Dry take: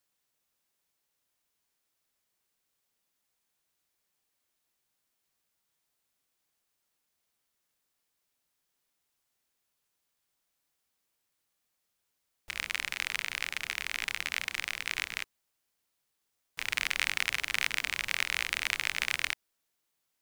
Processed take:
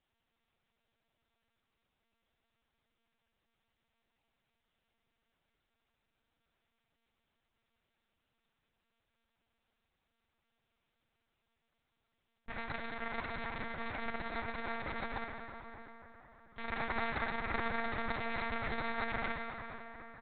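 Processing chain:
samples in bit-reversed order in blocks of 16 samples
low-shelf EQ 340 Hz +8 dB
comb filter 3.8 ms, depth 63%
dense smooth reverb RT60 4.4 s, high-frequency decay 0.55×, DRR 1.5 dB
one-pitch LPC vocoder at 8 kHz 230 Hz

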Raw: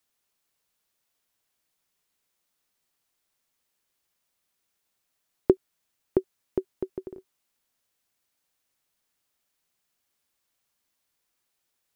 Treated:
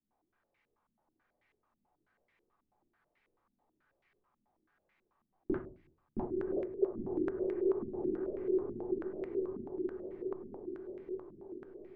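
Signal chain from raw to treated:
0:06.17–0:06.87: three sine waves on the formant tracks
in parallel at −2 dB: output level in coarse steps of 23 dB
on the sum: brickwall limiter −12.5 dBFS, peak gain reduction 9.5 dB
feedback delay with all-pass diffusion 946 ms, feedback 60%, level −4 dB
downward compressor 10 to 1, threshold −38 dBFS, peak gain reduction 18.5 dB
rectangular room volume 290 cubic metres, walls furnished, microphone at 3.6 metres
low-pass on a step sequencer 9.2 Hz 230–2,100 Hz
level −5.5 dB

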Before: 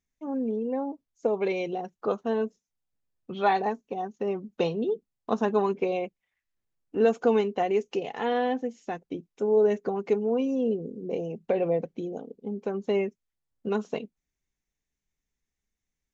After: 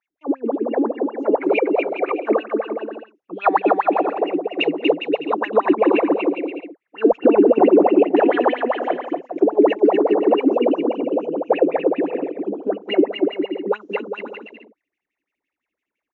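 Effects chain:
0:01.58–0:02.20: three sine waves on the formant tracks
LFO wah 5.9 Hz 280–2,800 Hz, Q 18
0:07.12–0:07.89: spectral tilt −4 dB per octave
bouncing-ball delay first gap 240 ms, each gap 0.7×, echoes 5
boost into a limiter +26.5 dB
level −3 dB

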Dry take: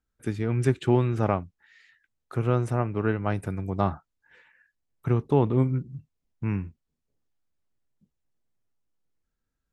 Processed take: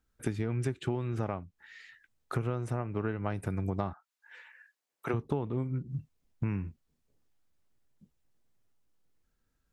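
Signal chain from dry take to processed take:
0:03.92–0:05.13: high-pass filter 1,100 Hz → 410 Hz 12 dB per octave
downward compressor 12 to 1, threshold −33 dBFS, peak gain reduction 18.5 dB
level +5 dB

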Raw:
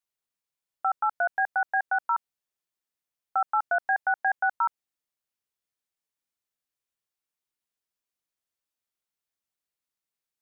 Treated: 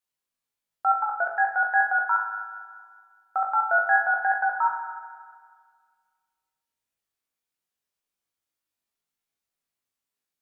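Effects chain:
tape wow and flutter 27 cents
flutter between parallel walls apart 3.3 metres, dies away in 0.25 s
spring reverb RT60 1.8 s, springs 31/38 ms, chirp 70 ms, DRR 5.5 dB

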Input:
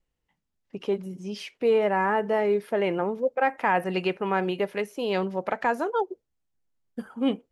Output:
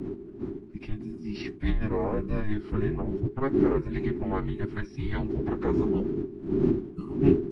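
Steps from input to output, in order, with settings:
wind on the microphone 190 Hz −23 dBFS
in parallel at +1 dB: downward compressor, threshold −25 dBFS, peak gain reduction 16.5 dB
on the sum: phase-vocoder pitch shift with formants kept −11.5 semitones
frequency shifter −420 Hz
level −7.5 dB

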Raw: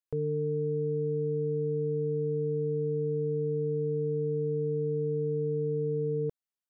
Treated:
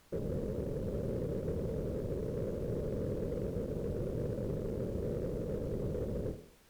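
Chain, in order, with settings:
sub-octave generator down 1 octave, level −6 dB
Butterworth low-pass 560 Hz
on a send: flutter between parallel walls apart 4.3 metres, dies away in 0.58 s
on the sum: random phases in short frames
background noise pink −56 dBFS
in parallel at −6 dB: soft clipping −31 dBFS, distortion −12 dB
on the sum: harmonic generator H 7 −25 dB, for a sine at −18 dBFS
level −7 dB

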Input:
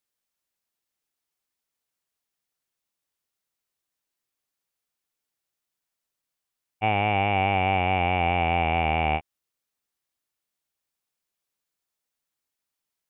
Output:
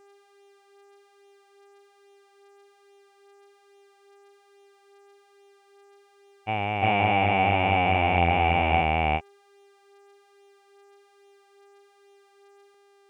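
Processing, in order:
hum with harmonics 400 Hz, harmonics 26, −59 dBFS −7 dB per octave
pitch vibrato 1.2 Hz 7.9 cents
backwards echo 349 ms −4.5 dB

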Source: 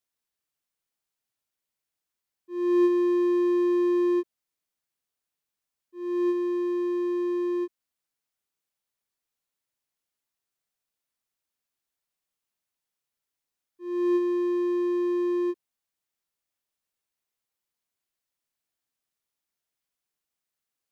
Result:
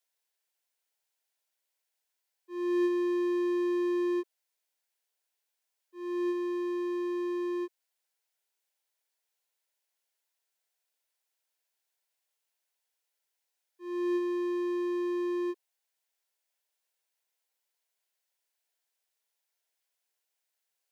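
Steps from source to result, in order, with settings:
in parallel at −4.5 dB: soft clipping −23.5 dBFS, distortion −14 dB
on the sum: high-pass filter 430 Hz 24 dB per octave
notch filter 1,200 Hz, Q 5.5
level −1 dB

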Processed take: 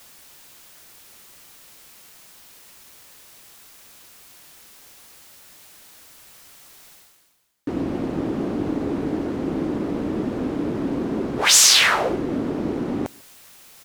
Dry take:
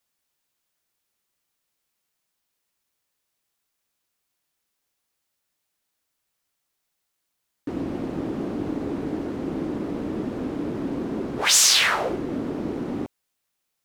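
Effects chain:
reversed playback
upward compression, threshold −29 dBFS
reversed playback
slap from a distant wall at 25 metres, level −27 dB
level +3.5 dB

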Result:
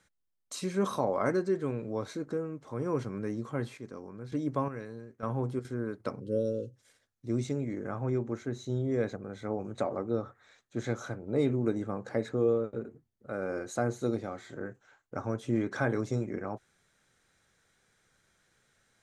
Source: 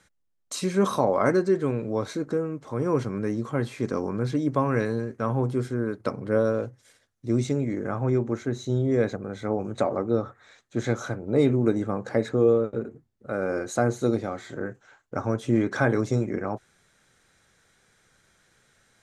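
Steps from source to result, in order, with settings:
0:03.41–0:05.65: square-wave tremolo 1.1 Hz, depth 65%, duty 40%
0:06.21–0:06.76: gain on a spectral selection 560–2,600 Hz −24 dB
level −7 dB

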